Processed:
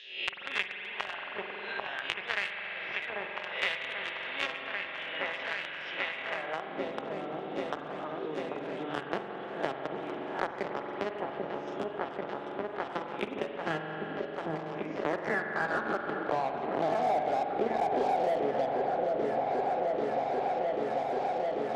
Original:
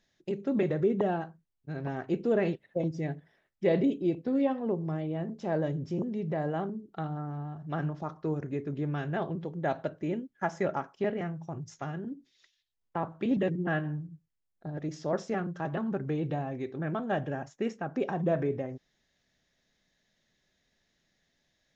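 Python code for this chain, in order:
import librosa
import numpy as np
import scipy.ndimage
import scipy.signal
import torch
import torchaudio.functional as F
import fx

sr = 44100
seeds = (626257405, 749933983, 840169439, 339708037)

p1 = fx.spec_swells(x, sr, rise_s=0.52)
p2 = fx.filter_sweep_bandpass(p1, sr, from_hz=3300.0, to_hz=770.0, start_s=14.3, end_s=16.86, q=5.1)
p3 = fx.fuzz(p2, sr, gain_db=47.0, gate_db=-47.0)
p4 = p2 + F.gain(torch.from_numpy(p3), -9.0).numpy()
p5 = fx.echo_opening(p4, sr, ms=790, hz=750, octaves=1, feedback_pct=70, wet_db=-6)
p6 = fx.filter_sweep_bandpass(p5, sr, from_hz=2500.0, to_hz=360.0, start_s=6.15, end_s=6.74, q=0.86)
p7 = fx.rev_spring(p6, sr, rt60_s=1.9, pass_ms=(44,), chirp_ms=45, drr_db=5.0)
p8 = fx.band_squash(p7, sr, depth_pct=100)
y = F.gain(torch.from_numpy(p8), 6.0).numpy()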